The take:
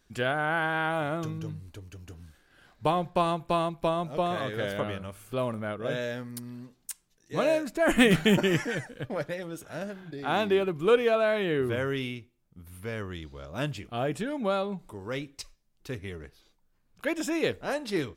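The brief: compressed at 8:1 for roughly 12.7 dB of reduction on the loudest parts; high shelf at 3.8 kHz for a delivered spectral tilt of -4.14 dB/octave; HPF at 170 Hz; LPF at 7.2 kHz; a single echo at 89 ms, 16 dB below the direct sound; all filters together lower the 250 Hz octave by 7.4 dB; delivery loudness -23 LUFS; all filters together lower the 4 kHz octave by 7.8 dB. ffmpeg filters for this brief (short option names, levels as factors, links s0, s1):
-af "highpass=170,lowpass=7200,equalizer=f=250:t=o:g=-9,highshelf=f=3800:g=-4,equalizer=f=4000:t=o:g=-8.5,acompressor=threshold=0.0251:ratio=8,aecho=1:1:89:0.158,volume=5.96"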